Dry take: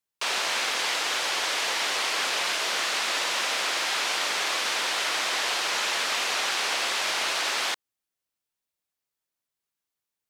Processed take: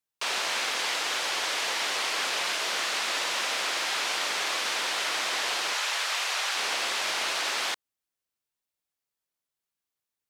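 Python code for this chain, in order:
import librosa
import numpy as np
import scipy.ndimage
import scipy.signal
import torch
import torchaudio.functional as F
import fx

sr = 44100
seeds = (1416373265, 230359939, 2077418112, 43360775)

y = fx.highpass(x, sr, hz=600.0, slope=12, at=(5.73, 6.56))
y = F.gain(torch.from_numpy(y), -2.0).numpy()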